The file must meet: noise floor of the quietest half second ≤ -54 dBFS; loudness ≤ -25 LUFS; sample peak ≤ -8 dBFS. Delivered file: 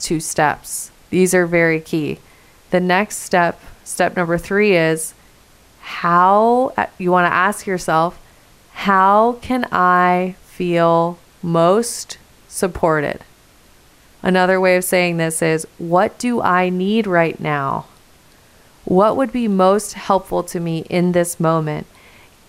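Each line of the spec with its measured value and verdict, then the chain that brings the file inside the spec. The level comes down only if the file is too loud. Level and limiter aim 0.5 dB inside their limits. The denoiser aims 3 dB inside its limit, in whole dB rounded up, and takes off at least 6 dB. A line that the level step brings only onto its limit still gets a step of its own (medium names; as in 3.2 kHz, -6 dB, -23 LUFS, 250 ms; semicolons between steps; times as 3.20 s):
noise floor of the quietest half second -49 dBFS: fail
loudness -16.5 LUFS: fail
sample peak -2.5 dBFS: fail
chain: trim -9 dB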